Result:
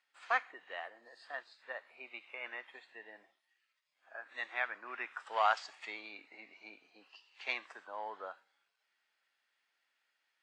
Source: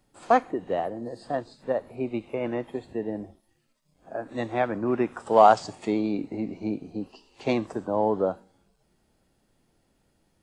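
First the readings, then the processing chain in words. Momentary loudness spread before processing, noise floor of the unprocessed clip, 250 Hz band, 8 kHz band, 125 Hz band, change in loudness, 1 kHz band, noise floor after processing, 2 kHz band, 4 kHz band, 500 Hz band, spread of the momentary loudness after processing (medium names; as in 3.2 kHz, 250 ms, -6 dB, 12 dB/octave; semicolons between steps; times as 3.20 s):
15 LU, -70 dBFS, -33.5 dB, no reading, under -40 dB, -12.5 dB, -13.5 dB, -83 dBFS, -0.5 dB, -4.0 dB, -21.5 dB, 20 LU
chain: ladder band-pass 2.3 kHz, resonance 30%; trim +9 dB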